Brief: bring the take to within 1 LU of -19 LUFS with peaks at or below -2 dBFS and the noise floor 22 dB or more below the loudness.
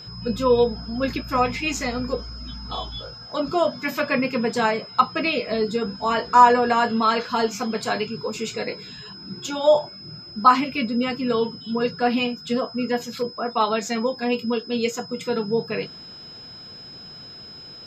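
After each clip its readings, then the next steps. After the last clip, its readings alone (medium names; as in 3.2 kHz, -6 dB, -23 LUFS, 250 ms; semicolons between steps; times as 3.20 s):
steady tone 5.1 kHz; tone level -39 dBFS; loudness -23.0 LUFS; peak level -1.5 dBFS; loudness target -19.0 LUFS
-> band-stop 5.1 kHz, Q 30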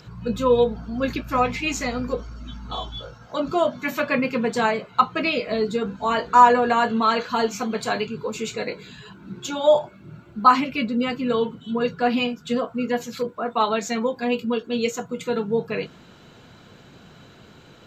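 steady tone not found; loudness -23.0 LUFS; peak level -1.5 dBFS; loudness target -19.0 LUFS
-> trim +4 dB; peak limiter -2 dBFS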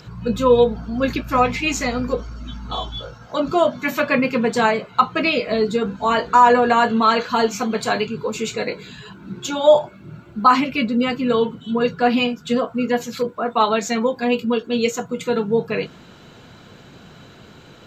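loudness -19.5 LUFS; peak level -2.0 dBFS; noise floor -45 dBFS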